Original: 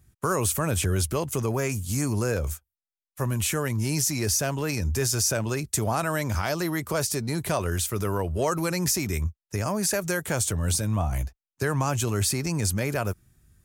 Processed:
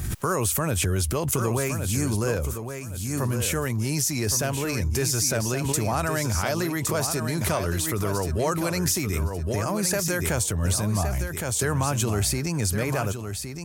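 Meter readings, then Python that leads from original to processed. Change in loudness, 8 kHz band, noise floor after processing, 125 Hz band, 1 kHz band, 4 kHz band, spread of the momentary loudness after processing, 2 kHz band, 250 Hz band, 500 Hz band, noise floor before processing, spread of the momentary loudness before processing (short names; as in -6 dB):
+1.0 dB, +1.5 dB, -33 dBFS, +1.5 dB, +1.0 dB, +1.5 dB, 4 LU, +1.0 dB, +1.5 dB, +1.0 dB, under -85 dBFS, 5 LU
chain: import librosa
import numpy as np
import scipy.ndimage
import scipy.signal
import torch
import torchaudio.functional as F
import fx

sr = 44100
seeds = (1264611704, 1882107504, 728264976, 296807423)

p1 = x + fx.echo_feedback(x, sr, ms=1115, feedback_pct=18, wet_db=-8, dry=0)
y = fx.pre_swell(p1, sr, db_per_s=28.0)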